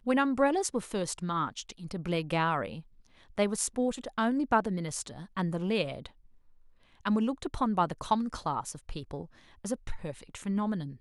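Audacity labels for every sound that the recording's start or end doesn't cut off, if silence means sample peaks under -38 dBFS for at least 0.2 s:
3.380000	6.060000	sound
7.050000	9.220000	sound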